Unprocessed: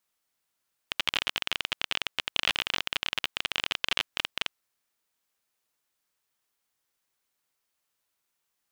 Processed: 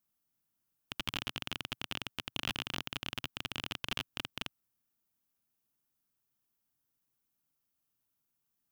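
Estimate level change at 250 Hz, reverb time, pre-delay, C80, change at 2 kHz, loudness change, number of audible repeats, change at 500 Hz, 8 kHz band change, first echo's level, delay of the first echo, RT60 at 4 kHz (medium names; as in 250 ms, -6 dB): +3.0 dB, no reverb, no reverb, no reverb, -10.0 dB, -9.0 dB, no echo, -6.5 dB, -7.0 dB, no echo, no echo, no reverb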